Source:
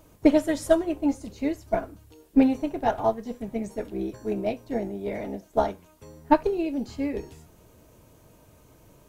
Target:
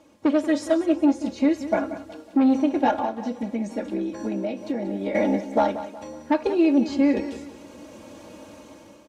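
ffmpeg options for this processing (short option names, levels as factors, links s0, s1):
-filter_complex "[0:a]aecho=1:1:3.6:0.8,asoftclip=type=tanh:threshold=0.282,highpass=160,lowpass=6300,dynaudnorm=f=390:g=5:m=5.01,alimiter=limit=0.282:level=0:latency=1:release=141,asettb=1/sr,asplit=3[s0][s1][s2];[s0]atrim=end=2.934[s3];[s1]atrim=start=2.93:end=5.15,asetpts=PTS-STARTPTS,afade=t=in:d=0.004:c=qsin,afade=t=out:st=2.216:d=0.004:c=qsin,acompressor=threshold=0.0562:ratio=6[s4];[s2]atrim=start=5.146[s5];[s3][s4]acrossfade=d=0.004:c1=hsin:c2=qsin[s6];[s6][s5]acrossfade=d=0.004:c1=qsin:c2=hsin,aecho=1:1:184|368|552|736:0.224|0.0895|0.0358|0.0143"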